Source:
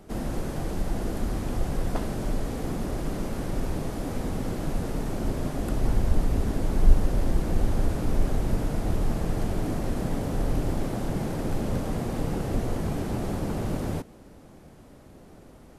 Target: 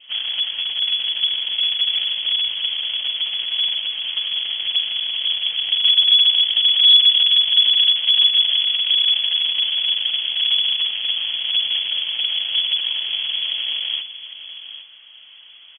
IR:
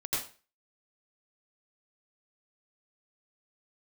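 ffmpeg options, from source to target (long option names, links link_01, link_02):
-filter_complex "[0:a]aeval=exprs='0.631*(cos(1*acos(clip(val(0)/0.631,-1,1)))-cos(1*PI/2))+0.158*(cos(6*acos(clip(val(0)/0.631,-1,1)))-cos(6*PI/2))':channel_layout=same,lowpass=frequency=2900:width_type=q:width=0.5098,lowpass=frequency=2900:width_type=q:width=0.6013,lowpass=frequency=2900:width_type=q:width=0.9,lowpass=frequency=2900:width_type=q:width=2.563,afreqshift=-3400,apsyclip=10.5dB,adynamicequalizer=threshold=0.0316:dfrequency=1300:dqfactor=1.1:tfrequency=1300:tqfactor=1.1:attack=5:release=100:ratio=0.375:range=3:mode=cutabove:tftype=bell,asplit=2[link_01][link_02];[link_02]aecho=0:1:808:0.251[link_03];[link_01][link_03]amix=inputs=2:normalize=0,volume=-6dB"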